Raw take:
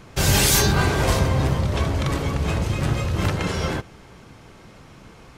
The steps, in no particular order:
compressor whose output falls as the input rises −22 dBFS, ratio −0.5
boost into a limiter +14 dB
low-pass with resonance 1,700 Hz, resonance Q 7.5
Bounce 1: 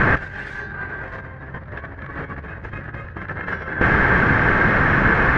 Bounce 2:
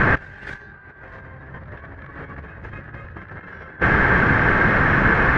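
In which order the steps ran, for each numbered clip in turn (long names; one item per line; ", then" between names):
boost into a limiter, then compressor whose output falls as the input rises, then low-pass with resonance
boost into a limiter, then low-pass with resonance, then compressor whose output falls as the input rises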